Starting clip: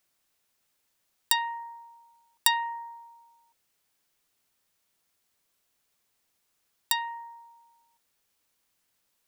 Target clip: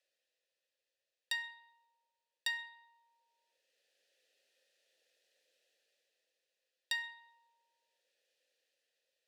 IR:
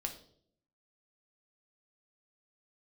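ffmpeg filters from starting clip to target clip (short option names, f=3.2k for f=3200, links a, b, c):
-filter_complex "[0:a]highpass=310,highshelf=f=3.1k:t=q:w=1.5:g=7.5,dynaudnorm=f=190:g=11:m=8dB,asplit=3[a][b][c];[a]bandpass=f=530:t=q:w=8,volume=0dB[d];[b]bandpass=f=1.84k:t=q:w=8,volume=-6dB[e];[c]bandpass=f=2.48k:t=q:w=8,volume=-9dB[f];[d][e][f]amix=inputs=3:normalize=0,asplit=2[g][h];[1:a]atrim=start_sample=2205,asetrate=35721,aresample=44100[i];[h][i]afir=irnorm=-1:irlink=0,volume=-1.5dB[j];[g][j]amix=inputs=2:normalize=0,volume=1.5dB"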